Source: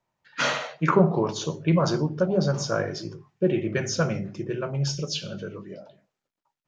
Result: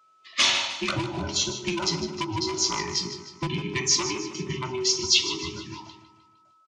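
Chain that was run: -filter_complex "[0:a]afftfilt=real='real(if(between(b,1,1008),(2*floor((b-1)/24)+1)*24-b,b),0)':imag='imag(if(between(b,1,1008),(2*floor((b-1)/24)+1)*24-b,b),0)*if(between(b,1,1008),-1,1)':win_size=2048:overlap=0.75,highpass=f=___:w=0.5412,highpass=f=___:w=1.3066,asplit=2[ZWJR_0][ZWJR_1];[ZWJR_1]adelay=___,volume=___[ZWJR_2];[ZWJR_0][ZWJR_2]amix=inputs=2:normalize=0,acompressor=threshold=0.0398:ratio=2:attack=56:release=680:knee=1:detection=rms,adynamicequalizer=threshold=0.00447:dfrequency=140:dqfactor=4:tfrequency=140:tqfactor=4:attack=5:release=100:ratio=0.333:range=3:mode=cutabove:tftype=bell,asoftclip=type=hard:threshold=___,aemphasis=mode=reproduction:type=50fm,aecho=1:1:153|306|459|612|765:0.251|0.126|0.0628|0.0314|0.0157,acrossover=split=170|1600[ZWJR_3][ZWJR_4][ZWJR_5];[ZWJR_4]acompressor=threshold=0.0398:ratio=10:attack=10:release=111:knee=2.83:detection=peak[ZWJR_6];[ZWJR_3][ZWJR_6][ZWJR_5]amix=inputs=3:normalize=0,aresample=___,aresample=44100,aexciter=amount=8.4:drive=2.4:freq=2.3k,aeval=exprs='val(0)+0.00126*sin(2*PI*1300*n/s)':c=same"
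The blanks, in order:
85, 85, 24, 0.2, 0.0841, 22050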